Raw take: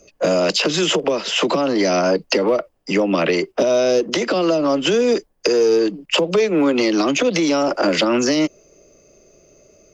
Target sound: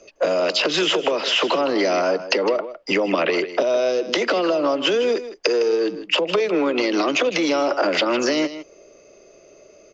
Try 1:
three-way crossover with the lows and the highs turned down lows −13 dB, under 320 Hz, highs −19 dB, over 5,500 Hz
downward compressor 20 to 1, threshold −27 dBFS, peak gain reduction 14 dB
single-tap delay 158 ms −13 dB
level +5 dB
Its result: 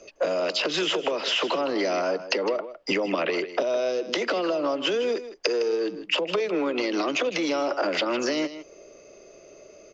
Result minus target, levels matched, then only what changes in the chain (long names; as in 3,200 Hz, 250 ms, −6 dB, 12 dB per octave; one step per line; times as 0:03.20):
downward compressor: peak gain reduction +5.5 dB
change: downward compressor 20 to 1, threshold −21 dBFS, peak gain reduction 8.5 dB